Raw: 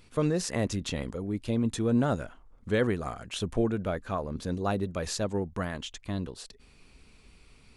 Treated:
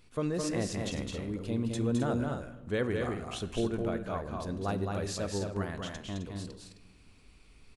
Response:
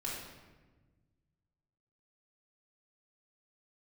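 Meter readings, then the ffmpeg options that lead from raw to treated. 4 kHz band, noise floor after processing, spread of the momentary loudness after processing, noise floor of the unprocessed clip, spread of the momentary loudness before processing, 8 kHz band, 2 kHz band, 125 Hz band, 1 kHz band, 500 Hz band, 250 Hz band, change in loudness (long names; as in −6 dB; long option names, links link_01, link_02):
−3.0 dB, −59 dBFS, 9 LU, −58 dBFS, 9 LU, −3.0 dB, −3.0 dB, −2.5 dB, −3.0 dB, −3.0 dB, −3.0 dB, −3.0 dB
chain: -filter_complex "[0:a]aecho=1:1:212.8|262.4:0.631|0.355,asplit=2[link_01][link_02];[1:a]atrim=start_sample=2205[link_03];[link_02][link_03]afir=irnorm=-1:irlink=0,volume=-13.5dB[link_04];[link_01][link_04]amix=inputs=2:normalize=0,volume=-6dB"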